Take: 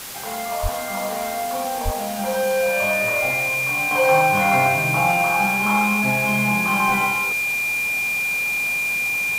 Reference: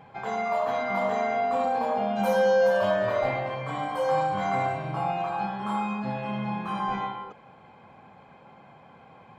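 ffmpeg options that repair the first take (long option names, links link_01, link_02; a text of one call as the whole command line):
ffmpeg -i in.wav -filter_complex "[0:a]bandreject=frequency=2400:width=30,asplit=3[link_01][link_02][link_03];[link_01]afade=type=out:start_time=0.62:duration=0.02[link_04];[link_02]highpass=frequency=140:width=0.5412,highpass=frequency=140:width=1.3066,afade=type=in:start_time=0.62:duration=0.02,afade=type=out:start_time=0.74:duration=0.02[link_05];[link_03]afade=type=in:start_time=0.74:duration=0.02[link_06];[link_04][link_05][link_06]amix=inputs=3:normalize=0,asplit=3[link_07][link_08][link_09];[link_07]afade=type=out:start_time=1.84:duration=0.02[link_10];[link_08]highpass=frequency=140:width=0.5412,highpass=frequency=140:width=1.3066,afade=type=in:start_time=1.84:duration=0.02,afade=type=out:start_time=1.96:duration=0.02[link_11];[link_09]afade=type=in:start_time=1.96:duration=0.02[link_12];[link_10][link_11][link_12]amix=inputs=3:normalize=0,afwtdn=0.022,asetnsamples=nb_out_samples=441:pad=0,asendcmd='3.91 volume volume -8dB',volume=0dB" out.wav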